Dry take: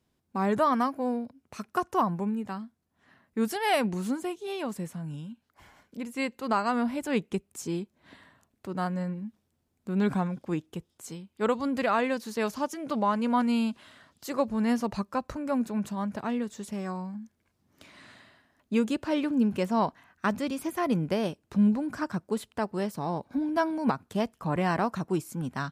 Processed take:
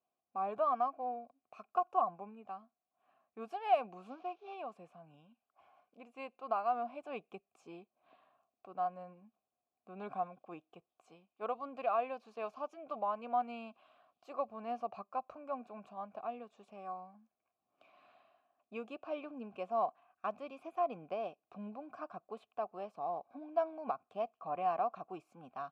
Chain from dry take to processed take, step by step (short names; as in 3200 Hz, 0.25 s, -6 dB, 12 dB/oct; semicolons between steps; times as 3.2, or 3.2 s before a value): 4.1–4.54 CVSD 32 kbps; vowel filter a; high shelf 4400 Hz -6.5 dB; gain +1 dB